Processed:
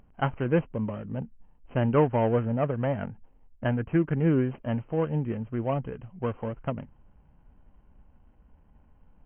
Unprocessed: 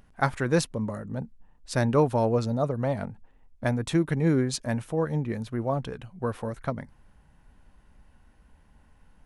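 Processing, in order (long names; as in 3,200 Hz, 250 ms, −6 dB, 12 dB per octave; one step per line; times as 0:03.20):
running median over 25 samples
0:01.92–0:04.17: dynamic equaliser 1,600 Hz, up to +6 dB, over −52 dBFS, Q 2.7
linear-phase brick-wall low-pass 3,200 Hz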